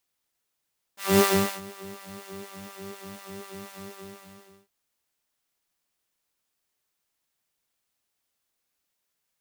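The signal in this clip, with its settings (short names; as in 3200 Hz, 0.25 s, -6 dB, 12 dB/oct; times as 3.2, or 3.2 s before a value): synth patch with filter wobble G3, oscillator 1 saw, oscillator 2 square, interval +12 st, sub -14 dB, noise -9 dB, filter highpass, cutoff 130 Hz, Q 0.84, filter envelope 2 oct, filter sustain 50%, attack 0.226 s, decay 0.41 s, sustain -23 dB, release 0.89 s, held 2.82 s, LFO 4.1 Hz, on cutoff 1.9 oct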